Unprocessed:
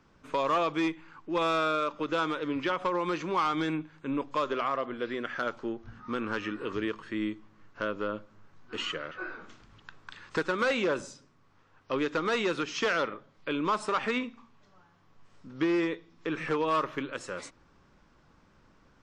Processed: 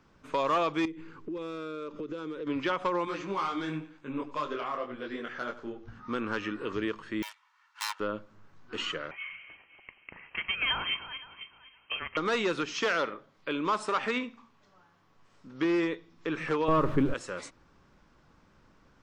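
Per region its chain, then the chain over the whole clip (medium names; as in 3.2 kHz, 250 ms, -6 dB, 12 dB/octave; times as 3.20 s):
0.85–2.47 s: resonant low shelf 550 Hz +7 dB, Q 3 + compression, threshold -35 dBFS
3.05–5.88 s: feedback delay 94 ms, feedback 36%, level -15.5 dB + detune thickener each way 33 cents
7.22–8.00 s: self-modulated delay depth 0.86 ms + elliptic high-pass 940 Hz, stop band 70 dB + comb 2.2 ms, depth 47%
9.11–12.17 s: backward echo that repeats 258 ms, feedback 44%, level -12 dB + Chebyshev high-pass 530 Hz, order 8 + frequency inversion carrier 3.7 kHz
12.74–15.65 s: bass shelf 130 Hz -8 dB + delay 71 ms -22 dB
16.68–17.14 s: jump at every zero crossing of -38.5 dBFS + tilt EQ -4.5 dB/octave + tape noise reduction on one side only decoder only
whole clip: none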